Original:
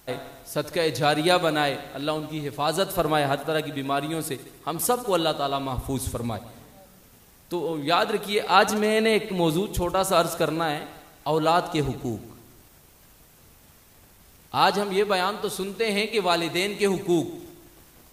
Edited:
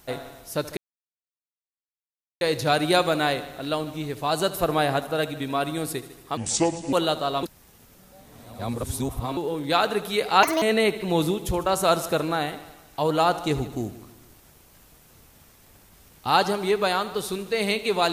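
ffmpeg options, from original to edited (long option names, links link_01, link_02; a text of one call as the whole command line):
ffmpeg -i in.wav -filter_complex "[0:a]asplit=8[link_01][link_02][link_03][link_04][link_05][link_06][link_07][link_08];[link_01]atrim=end=0.77,asetpts=PTS-STARTPTS,afade=type=out:start_time=0.766:duration=0.004:curve=hsin,apad=pad_dur=1.64[link_09];[link_02]atrim=start=0.77:end=4.734,asetpts=PTS-STARTPTS,afade=type=in:duration=0.004:curve=hsin[link_10];[link_03]atrim=start=4.73:end=5.11,asetpts=PTS-STARTPTS,asetrate=29988,aresample=44100,atrim=end_sample=24644,asetpts=PTS-STARTPTS[link_11];[link_04]atrim=start=5.106:end=5.612[link_12];[link_05]atrim=start=5.608:end=7.552,asetpts=PTS-STARTPTS,areverse[link_13];[link_06]atrim=start=7.548:end=8.614[link_14];[link_07]atrim=start=8.61:end=8.9,asetpts=PTS-STARTPTS,asetrate=67032,aresample=44100[link_15];[link_08]atrim=start=8.896[link_16];[link_09][link_10]concat=n=2:v=0:a=1[link_17];[link_17][link_11]acrossfade=duration=0.004:curve1=hsin:curve2=hsin[link_18];[link_18][link_12]acrossfade=duration=0.004:curve1=hsin:curve2=hsin[link_19];[link_19][link_13]acrossfade=duration=0.004:curve1=hsin:curve2=hsin[link_20];[link_20][link_14]acrossfade=duration=0.004:curve1=hsin:curve2=hsin[link_21];[link_21][link_15]acrossfade=duration=0.004:curve1=hsin:curve2=hsin[link_22];[link_22][link_16]acrossfade=duration=0.004:curve1=hsin:curve2=hsin" out.wav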